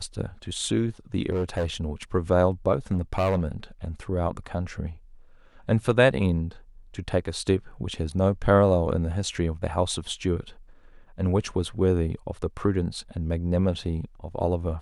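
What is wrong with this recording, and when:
1.30–1.66 s: clipped -21.5 dBFS
2.92–3.43 s: clipped -18.5 dBFS

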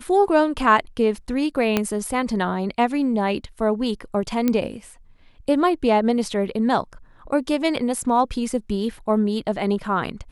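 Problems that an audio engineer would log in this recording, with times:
1.77 s: pop -5 dBFS
4.48 s: pop -8 dBFS

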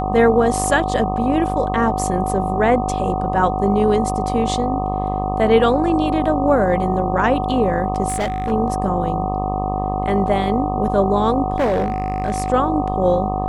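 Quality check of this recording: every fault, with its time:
buzz 50 Hz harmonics 25 -24 dBFS
whine 750 Hz -23 dBFS
8.08–8.52 s: clipped -17 dBFS
11.56–12.50 s: clipped -14 dBFS

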